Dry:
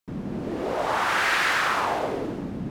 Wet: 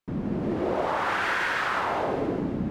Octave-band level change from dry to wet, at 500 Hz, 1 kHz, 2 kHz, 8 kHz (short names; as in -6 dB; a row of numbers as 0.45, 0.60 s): +0.5, -2.0, -3.5, -10.5 dB